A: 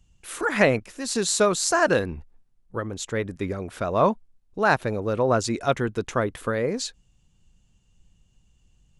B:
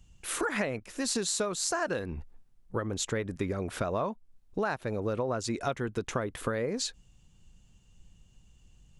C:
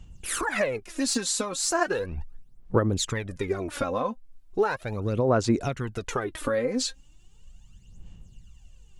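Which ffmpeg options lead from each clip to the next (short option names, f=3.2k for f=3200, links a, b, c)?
-af "acompressor=threshold=-30dB:ratio=10,volume=2.5dB"
-af "aphaser=in_gain=1:out_gain=1:delay=3.9:decay=0.67:speed=0.37:type=sinusoidal,volume=1.5dB"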